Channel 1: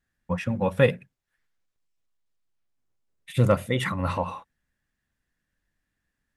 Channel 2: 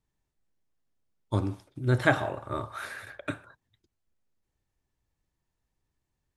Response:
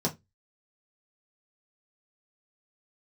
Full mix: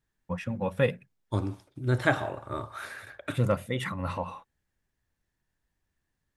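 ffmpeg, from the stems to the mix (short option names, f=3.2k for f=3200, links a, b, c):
-filter_complex "[0:a]volume=-5.5dB[a];[1:a]volume=-1.5dB[b];[a][b]amix=inputs=2:normalize=0"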